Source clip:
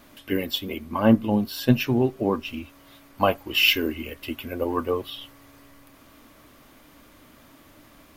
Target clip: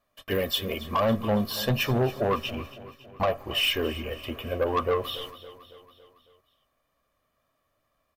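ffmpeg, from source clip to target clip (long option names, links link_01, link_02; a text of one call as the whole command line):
ffmpeg -i in.wav -filter_complex "[0:a]asettb=1/sr,asplit=3[link_01][link_02][link_03];[link_01]atrim=end=2.504[link_04];[link_02]atrim=start=2.5:end=5.04,asetpts=PTS-STARTPTS,afade=type=in:duration=0.004:curve=qsin,afade=type=out:start_time=2.536:duration=0.004:curve=qsin,highshelf=frequency=2500:gain=-9.5[link_05];[link_03]atrim=start=5.036[link_06];[link_04][link_05]acrossfade=duration=0.004:curve1=hsin:curve2=qsin[link_07];[link_07][link_06]acrossfade=duration=0.004:curve1=qsin:curve2=hsin,agate=range=-27dB:threshold=-45dB:ratio=16:detection=peak,equalizer=frequency=920:width=0.9:gain=6,aecho=1:1:1.7:0.61,alimiter=limit=-11dB:level=0:latency=1:release=115,asoftclip=type=tanh:threshold=-19.5dB,aecho=1:1:278|556|834|1112|1390:0.15|0.0838|0.0469|0.0263|0.0147,volume=1dB" out.wav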